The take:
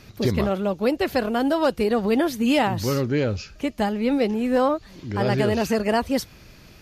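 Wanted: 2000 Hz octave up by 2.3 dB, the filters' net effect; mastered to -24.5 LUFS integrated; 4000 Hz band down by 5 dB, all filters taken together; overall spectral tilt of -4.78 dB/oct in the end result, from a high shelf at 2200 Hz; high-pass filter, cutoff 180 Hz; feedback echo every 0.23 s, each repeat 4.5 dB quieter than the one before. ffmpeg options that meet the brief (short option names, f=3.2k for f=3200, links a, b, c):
-af "highpass=180,equalizer=f=2k:t=o:g=6,highshelf=f=2.2k:g=-3,equalizer=f=4k:t=o:g=-7,aecho=1:1:230|460|690|920|1150|1380|1610|1840|2070:0.596|0.357|0.214|0.129|0.0772|0.0463|0.0278|0.0167|0.01,volume=-3dB"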